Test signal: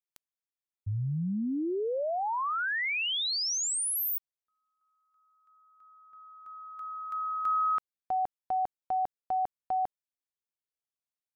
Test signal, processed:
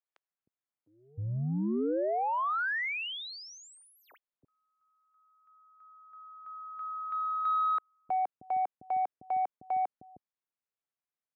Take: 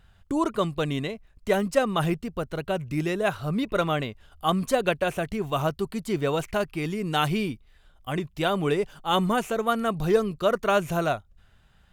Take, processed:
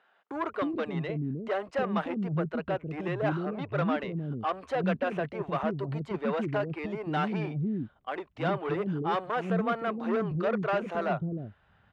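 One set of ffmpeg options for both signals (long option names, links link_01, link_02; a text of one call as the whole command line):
ffmpeg -i in.wav -filter_complex "[0:a]asoftclip=type=tanh:threshold=-25dB,highpass=120,lowpass=2000,acrossover=split=360[link_01][link_02];[link_01]adelay=310[link_03];[link_03][link_02]amix=inputs=2:normalize=0,volume=2dB" out.wav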